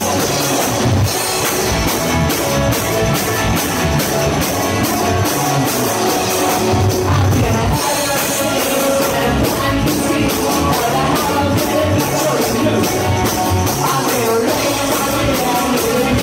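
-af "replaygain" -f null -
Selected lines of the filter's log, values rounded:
track_gain = -0.9 dB
track_peak = 0.336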